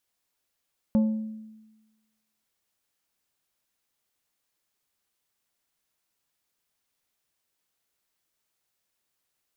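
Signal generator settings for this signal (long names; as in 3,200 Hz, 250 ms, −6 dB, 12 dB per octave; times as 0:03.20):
struck glass plate, length 1.52 s, lowest mode 218 Hz, decay 1.17 s, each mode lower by 12 dB, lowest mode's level −16.5 dB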